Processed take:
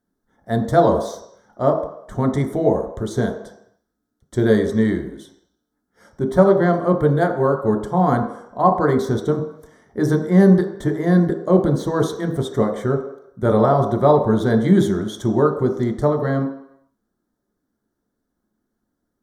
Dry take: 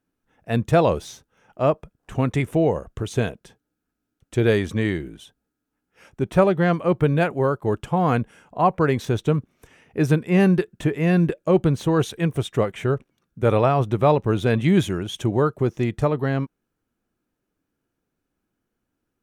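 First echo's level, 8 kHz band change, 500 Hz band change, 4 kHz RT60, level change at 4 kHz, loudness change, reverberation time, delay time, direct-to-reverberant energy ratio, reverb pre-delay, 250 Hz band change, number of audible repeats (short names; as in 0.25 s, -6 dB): none, n/a, +3.5 dB, 0.70 s, -2.5 dB, +3.0 dB, 0.75 s, none, 3.5 dB, 3 ms, +4.0 dB, none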